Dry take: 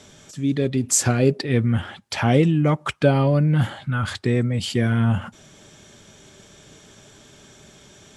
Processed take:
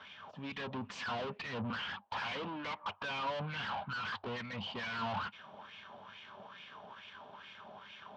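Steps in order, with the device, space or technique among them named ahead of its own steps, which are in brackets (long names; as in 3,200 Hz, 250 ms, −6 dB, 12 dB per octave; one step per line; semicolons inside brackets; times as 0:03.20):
0:01.70–0:02.84: high-pass filter 230 Hz 24 dB per octave
wah-wah guitar rig (LFO wah 2.3 Hz 690–2,400 Hz, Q 4.2; tube saturation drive 50 dB, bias 0.65; loudspeaker in its box 81–4,400 Hz, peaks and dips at 97 Hz +9 dB, 200 Hz +10 dB, 340 Hz −7 dB, 1,000 Hz +9 dB, 2,000 Hz −6 dB, 3,000 Hz +6 dB)
level +12 dB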